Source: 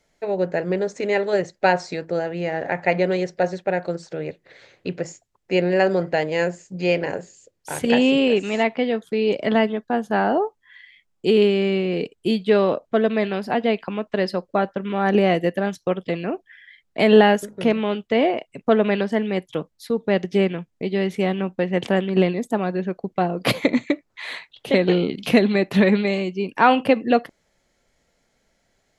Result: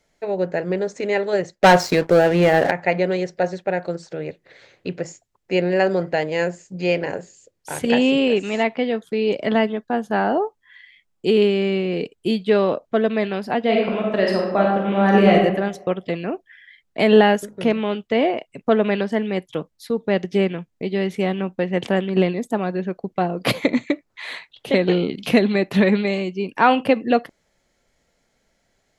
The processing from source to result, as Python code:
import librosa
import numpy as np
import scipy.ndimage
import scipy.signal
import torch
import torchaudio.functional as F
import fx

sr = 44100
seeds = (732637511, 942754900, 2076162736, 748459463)

y = fx.leveller(x, sr, passes=3, at=(1.54, 2.71))
y = fx.reverb_throw(y, sr, start_s=13.63, length_s=1.7, rt60_s=0.97, drr_db=-2.0)